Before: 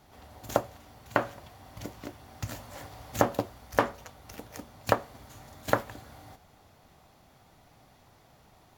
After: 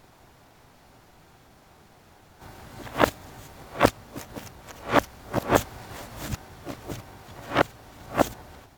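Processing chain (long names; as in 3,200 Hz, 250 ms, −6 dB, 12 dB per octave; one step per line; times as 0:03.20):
played backwards from end to start
pitch-shifted copies added −12 semitones −5 dB, +3 semitones −4 dB, +12 semitones −6 dB
level +2 dB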